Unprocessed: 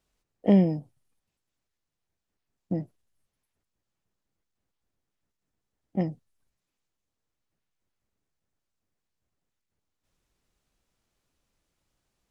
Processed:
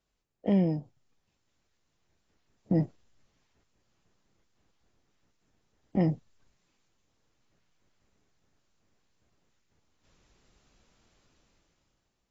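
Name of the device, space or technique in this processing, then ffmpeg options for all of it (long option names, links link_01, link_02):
low-bitrate web radio: -af "dynaudnorm=framelen=210:gausssize=9:maxgain=14dB,alimiter=limit=-14dB:level=0:latency=1:release=103,volume=-3.5dB" -ar 22050 -c:a aac -b:a 24k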